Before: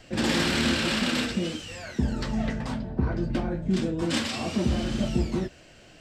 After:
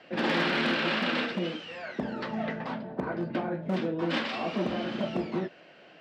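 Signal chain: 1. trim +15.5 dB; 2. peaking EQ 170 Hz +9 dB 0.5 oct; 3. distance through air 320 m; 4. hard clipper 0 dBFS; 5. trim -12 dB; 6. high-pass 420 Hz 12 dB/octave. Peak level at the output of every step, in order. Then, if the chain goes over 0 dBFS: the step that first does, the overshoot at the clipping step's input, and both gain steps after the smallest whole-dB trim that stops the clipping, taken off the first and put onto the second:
+2.5 dBFS, +7.0 dBFS, +6.5 dBFS, 0.0 dBFS, -12.0 dBFS, -15.0 dBFS; step 1, 6.5 dB; step 1 +8.5 dB, step 5 -5 dB

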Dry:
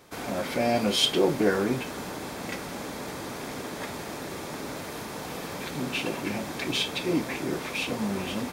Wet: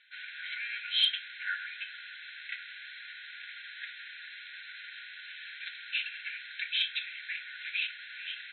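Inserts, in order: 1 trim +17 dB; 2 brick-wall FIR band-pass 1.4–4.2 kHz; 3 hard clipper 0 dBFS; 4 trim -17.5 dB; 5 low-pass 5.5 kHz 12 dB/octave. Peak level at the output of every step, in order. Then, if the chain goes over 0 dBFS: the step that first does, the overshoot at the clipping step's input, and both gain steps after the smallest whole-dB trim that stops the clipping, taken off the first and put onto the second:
+9.0 dBFS, +8.0 dBFS, 0.0 dBFS, -17.5 dBFS, -16.5 dBFS; step 1, 8.0 dB; step 1 +9 dB, step 4 -9.5 dB

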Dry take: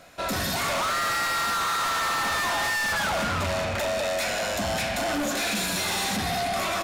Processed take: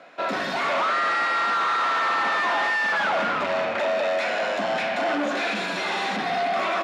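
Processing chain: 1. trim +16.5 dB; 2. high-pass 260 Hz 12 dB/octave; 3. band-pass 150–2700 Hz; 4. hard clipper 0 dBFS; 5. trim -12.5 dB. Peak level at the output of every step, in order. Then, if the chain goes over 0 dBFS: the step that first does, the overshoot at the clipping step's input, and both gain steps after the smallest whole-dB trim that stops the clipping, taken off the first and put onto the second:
-8.5 dBFS, -2.0 dBFS, -2.5 dBFS, -2.5 dBFS, -15.0 dBFS; nothing clips

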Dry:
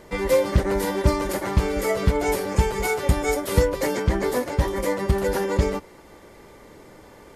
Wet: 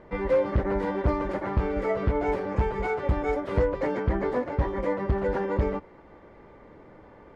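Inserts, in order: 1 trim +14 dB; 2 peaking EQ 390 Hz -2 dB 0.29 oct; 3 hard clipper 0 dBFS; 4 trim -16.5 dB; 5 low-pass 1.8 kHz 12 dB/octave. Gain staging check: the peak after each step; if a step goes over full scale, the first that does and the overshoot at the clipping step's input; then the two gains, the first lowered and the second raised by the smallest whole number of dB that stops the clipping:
+9.0 dBFS, +9.0 dBFS, 0.0 dBFS, -16.5 dBFS, -16.0 dBFS; step 1, 9.0 dB; step 1 +5 dB, step 4 -7.5 dB

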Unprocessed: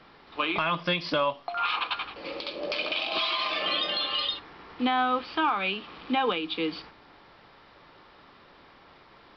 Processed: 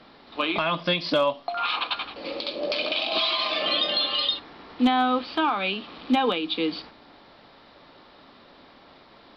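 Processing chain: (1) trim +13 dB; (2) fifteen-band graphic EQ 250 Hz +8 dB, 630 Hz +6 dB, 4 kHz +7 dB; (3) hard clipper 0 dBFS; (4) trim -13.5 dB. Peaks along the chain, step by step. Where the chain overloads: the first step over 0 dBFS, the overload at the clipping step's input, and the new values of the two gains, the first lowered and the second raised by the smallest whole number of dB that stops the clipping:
-2.5 dBFS, +4.5 dBFS, 0.0 dBFS, -13.5 dBFS; step 2, 4.5 dB; step 1 +8 dB, step 4 -8.5 dB

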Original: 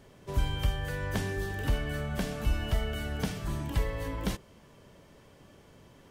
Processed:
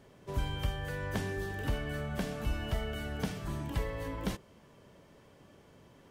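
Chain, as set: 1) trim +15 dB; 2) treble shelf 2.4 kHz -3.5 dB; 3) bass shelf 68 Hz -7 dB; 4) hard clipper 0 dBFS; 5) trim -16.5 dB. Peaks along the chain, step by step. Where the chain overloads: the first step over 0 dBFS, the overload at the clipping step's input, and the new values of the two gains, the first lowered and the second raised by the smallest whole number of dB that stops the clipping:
-2.0 dBFS, -2.5 dBFS, -4.0 dBFS, -4.0 dBFS, -20.5 dBFS; nothing clips

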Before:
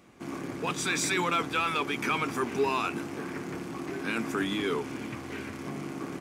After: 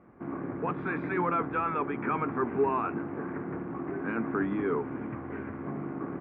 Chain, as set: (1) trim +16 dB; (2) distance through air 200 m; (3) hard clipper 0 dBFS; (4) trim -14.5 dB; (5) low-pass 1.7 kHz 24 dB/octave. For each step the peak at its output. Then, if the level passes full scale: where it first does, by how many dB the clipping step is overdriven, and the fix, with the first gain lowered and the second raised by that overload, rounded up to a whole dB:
-1.5 dBFS, -2.5 dBFS, -2.5 dBFS, -17.0 dBFS, -17.5 dBFS; nothing clips

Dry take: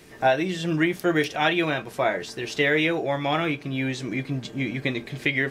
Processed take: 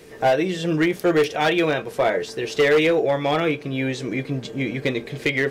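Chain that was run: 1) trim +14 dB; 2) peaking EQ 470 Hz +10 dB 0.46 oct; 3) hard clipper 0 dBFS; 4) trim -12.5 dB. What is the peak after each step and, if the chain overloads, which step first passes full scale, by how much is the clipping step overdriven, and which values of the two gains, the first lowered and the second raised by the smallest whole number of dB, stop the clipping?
+7.0 dBFS, +9.0 dBFS, 0.0 dBFS, -12.5 dBFS; step 1, 9.0 dB; step 1 +5 dB, step 4 -3.5 dB

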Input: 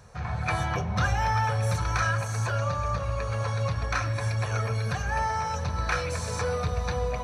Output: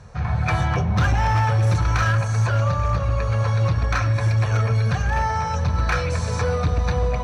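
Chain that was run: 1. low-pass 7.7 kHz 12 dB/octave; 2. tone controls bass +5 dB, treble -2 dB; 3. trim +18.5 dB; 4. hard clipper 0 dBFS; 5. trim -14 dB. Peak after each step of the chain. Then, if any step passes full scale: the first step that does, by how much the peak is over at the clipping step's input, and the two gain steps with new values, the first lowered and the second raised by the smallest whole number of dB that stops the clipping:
-14.5 dBFS, -11.0 dBFS, +7.5 dBFS, 0.0 dBFS, -14.0 dBFS; step 3, 7.5 dB; step 3 +10.5 dB, step 5 -6 dB

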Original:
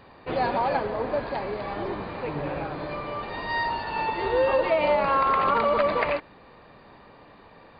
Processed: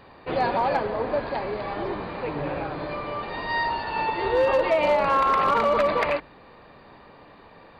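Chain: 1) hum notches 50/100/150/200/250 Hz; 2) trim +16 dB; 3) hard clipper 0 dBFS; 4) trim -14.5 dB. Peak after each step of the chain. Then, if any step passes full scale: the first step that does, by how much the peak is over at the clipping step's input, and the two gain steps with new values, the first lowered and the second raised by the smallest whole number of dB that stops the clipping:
-10.0 dBFS, +6.0 dBFS, 0.0 dBFS, -14.5 dBFS; step 2, 6.0 dB; step 2 +10 dB, step 4 -8.5 dB

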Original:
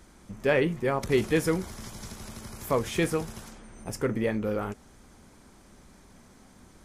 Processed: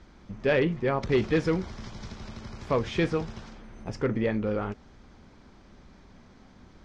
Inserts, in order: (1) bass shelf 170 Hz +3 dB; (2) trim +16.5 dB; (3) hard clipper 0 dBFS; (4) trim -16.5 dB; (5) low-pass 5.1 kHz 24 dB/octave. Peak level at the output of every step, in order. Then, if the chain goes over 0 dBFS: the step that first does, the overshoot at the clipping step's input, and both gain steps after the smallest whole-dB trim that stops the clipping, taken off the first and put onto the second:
-11.5 dBFS, +5.0 dBFS, 0.0 dBFS, -16.5 dBFS, -16.0 dBFS; step 2, 5.0 dB; step 2 +11.5 dB, step 4 -11.5 dB

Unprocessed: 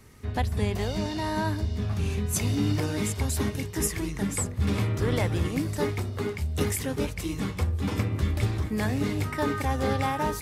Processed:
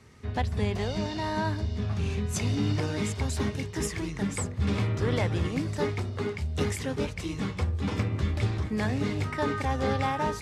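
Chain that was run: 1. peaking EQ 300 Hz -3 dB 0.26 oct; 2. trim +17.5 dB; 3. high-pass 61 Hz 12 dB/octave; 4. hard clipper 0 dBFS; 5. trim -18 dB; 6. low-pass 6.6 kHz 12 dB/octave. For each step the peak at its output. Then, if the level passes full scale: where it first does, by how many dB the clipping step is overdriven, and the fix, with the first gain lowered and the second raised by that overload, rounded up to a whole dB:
-13.0 dBFS, +4.5 dBFS, +4.5 dBFS, 0.0 dBFS, -18.0 dBFS, -17.5 dBFS; step 2, 4.5 dB; step 2 +12.5 dB, step 5 -13 dB

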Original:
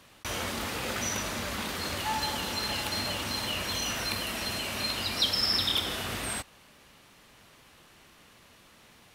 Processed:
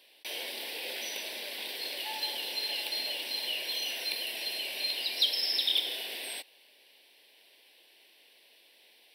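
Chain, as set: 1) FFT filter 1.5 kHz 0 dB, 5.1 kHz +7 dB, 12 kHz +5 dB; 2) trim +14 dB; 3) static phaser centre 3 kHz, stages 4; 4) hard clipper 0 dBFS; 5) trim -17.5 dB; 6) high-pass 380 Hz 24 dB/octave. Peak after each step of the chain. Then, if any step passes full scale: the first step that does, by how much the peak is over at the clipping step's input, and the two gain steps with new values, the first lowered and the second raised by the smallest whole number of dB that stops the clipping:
-8.0 dBFS, +6.0 dBFS, +4.0 dBFS, 0.0 dBFS, -17.5 dBFS, -16.0 dBFS; step 2, 4.0 dB; step 2 +10 dB, step 5 -13.5 dB

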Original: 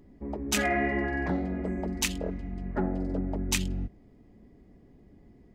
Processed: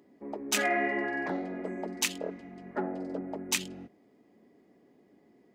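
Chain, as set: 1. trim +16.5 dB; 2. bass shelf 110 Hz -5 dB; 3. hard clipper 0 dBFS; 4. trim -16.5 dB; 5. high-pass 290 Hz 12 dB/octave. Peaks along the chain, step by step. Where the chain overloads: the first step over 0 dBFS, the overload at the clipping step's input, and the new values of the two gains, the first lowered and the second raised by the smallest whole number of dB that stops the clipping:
+4.0 dBFS, +3.5 dBFS, 0.0 dBFS, -16.5 dBFS, -14.5 dBFS; step 1, 3.5 dB; step 1 +12.5 dB, step 4 -12.5 dB

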